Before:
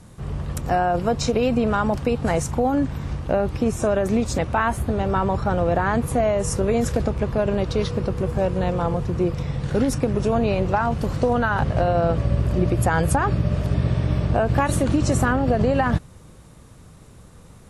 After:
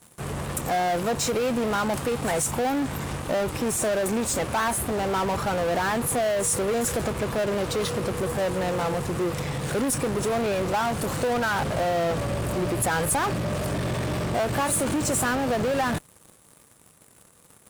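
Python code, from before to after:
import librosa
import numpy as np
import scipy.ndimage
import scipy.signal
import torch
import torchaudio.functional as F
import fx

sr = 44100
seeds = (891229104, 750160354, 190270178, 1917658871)

p1 = fx.highpass(x, sr, hz=370.0, slope=6)
p2 = fx.high_shelf_res(p1, sr, hz=6900.0, db=8.0, q=1.5)
p3 = fx.fuzz(p2, sr, gain_db=38.0, gate_db=-44.0)
p4 = p2 + (p3 * librosa.db_to_amplitude(-5.0))
y = p4 * librosa.db_to_amplitude(-9.0)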